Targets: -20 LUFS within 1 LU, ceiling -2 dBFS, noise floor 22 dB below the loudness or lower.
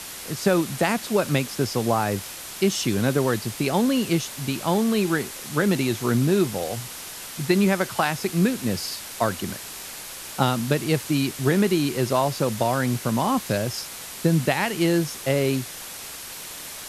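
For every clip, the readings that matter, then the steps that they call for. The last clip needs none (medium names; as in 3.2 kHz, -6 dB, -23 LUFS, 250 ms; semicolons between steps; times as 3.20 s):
noise floor -37 dBFS; noise floor target -46 dBFS; loudness -23.5 LUFS; peak level -4.5 dBFS; loudness target -20.0 LUFS
-> noise reduction 9 dB, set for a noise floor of -37 dBFS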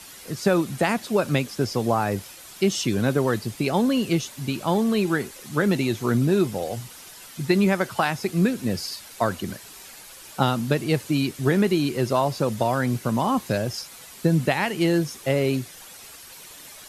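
noise floor -44 dBFS; noise floor target -46 dBFS
-> noise reduction 6 dB, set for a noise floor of -44 dBFS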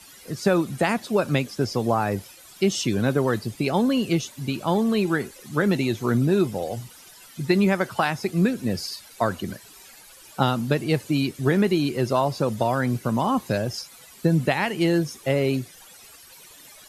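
noise floor -48 dBFS; loudness -24.0 LUFS; peak level -4.5 dBFS; loudness target -20.0 LUFS
-> trim +4 dB; peak limiter -2 dBFS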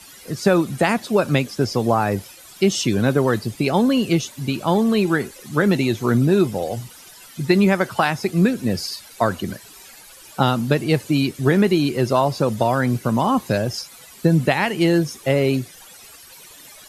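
loudness -20.0 LUFS; peak level -2.0 dBFS; noise floor -44 dBFS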